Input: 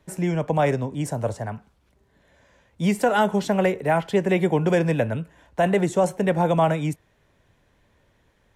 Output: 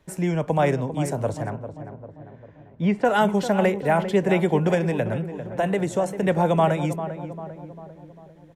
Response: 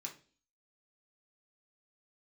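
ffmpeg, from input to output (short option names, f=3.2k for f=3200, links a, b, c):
-filter_complex "[0:a]asettb=1/sr,asplit=3[a][b][c];[a]atrim=end=1.504[d];[b]atrim=start=1.5:end=3.05,asetpts=PTS-STARTPTS,afade=t=in:d=0.004:c=qsin,afade=t=out:st=1.546:d=0.004:c=qsin,lowpass=2.3k[e];[c]atrim=start=3.046[f];[d][e]acrossfade=d=0.004:c1=hsin:c2=qsin[g];[g][f]acrossfade=d=0.004:c1=qsin:c2=hsin,asettb=1/sr,asplit=3[h][i][j];[h]atrim=end=4.744[k];[i]atrim=start=4.74:end=6.23,asetpts=PTS-STARTPTS,afade=t=in:d=0.004:c=qsin,afade=t=out:st=1.486:d=0.004:c=qsin,acompressor=threshold=-20dB:ratio=3[l];[j]atrim=start=6.226[m];[k][l]acrossfade=d=0.004:c1=hsin:c2=qsin[n];[n][m]acrossfade=d=0.004:c1=qsin:c2=hsin,asplit=2[o][p];[p]adelay=397,lowpass=f=1.4k:p=1,volume=-10dB,asplit=2[q][r];[r]adelay=397,lowpass=f=1.4k:p=1,volume=0.55,asplit=2[s][t];[t]adelay=397,lowpass=f=1.4k:p=1,volume=0.55,asplit=2[u][v];[v]adelay=397,lowpass=f=1.4k:p=1,volume=0.55,asplit=2[w][x];[x]adelay=397,lowpass=f=1.4k:p=1,volume=0.55,asplit=2[y][z];[z]adelay=397,lowpass=f=1.4k:p=1,volume=0.55[aa];[o][q][s][u][w][y][aa]amix=inputs=7:normalize=0"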